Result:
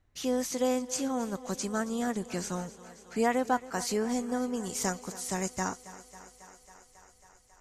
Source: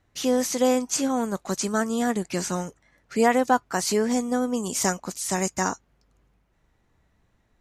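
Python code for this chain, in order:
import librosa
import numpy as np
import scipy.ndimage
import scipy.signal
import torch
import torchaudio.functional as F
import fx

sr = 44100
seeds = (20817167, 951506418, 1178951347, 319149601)

p1 = fx.low_shelf(x, sr, hz=67.0, db=11.5)
p2 = p1 + fx.echo_thinned(p1, sr, ms=273, feedback_pct=79, hz=190.0, wet_db=-17, dry=0)
y = F.gain(torch.from_numpy(p2), -7.5).numpy()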